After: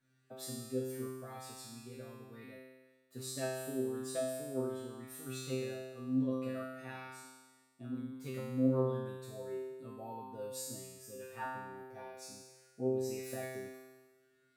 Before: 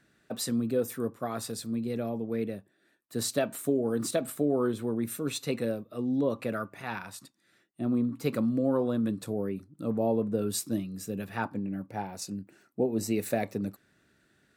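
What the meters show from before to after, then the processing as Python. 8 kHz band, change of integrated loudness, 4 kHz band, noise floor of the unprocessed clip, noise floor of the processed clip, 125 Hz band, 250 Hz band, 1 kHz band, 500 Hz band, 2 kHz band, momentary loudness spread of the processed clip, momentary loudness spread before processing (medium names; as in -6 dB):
-8.5 dB, -8.5 dB, -9.5 dB, -69 dBFS, -72 dBFS, -6.5 dB, -10.0 dB, -8.5 dB, -8.0 dB, -8.0 dB, 17 LU, 10 LU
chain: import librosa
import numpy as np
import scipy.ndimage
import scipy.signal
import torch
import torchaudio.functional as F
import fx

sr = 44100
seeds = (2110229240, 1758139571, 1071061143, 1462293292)

y = fx.comb_fb(x, sr, f0_hz=130.0, decay_s=1.3, harmonics='all', damping=0.0, mix_pct=100)
y = y * 10.0 ** (8.5 / 20.0)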